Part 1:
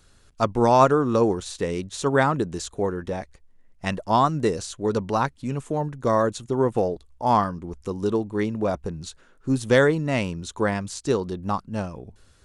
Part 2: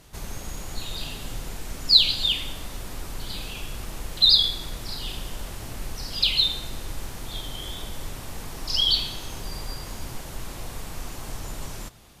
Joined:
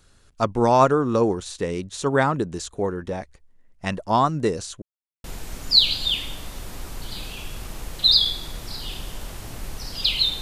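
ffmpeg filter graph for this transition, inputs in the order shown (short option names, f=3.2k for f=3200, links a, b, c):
-filter_complex "[0:a]apad=whole_dur=10.41,atrim=end=10.41,asplit=2[a][b];[a]atrim=end=4.82,asetpts=PTS-STARTPTS,afade=t=out:st=4.816:d=0.004:c=hsin[c];[b]atrim=start=4.82:end=5.24,asetpts=PTS-STARTPTS,volume=0[d];[1:a]atrim=start=1.42:end=6.59,asetpts=PTS-STARTPTS,afade=t=in:d=0.004:c=hsin[e];[c][d][e]concat=n=3:v=0:a=1"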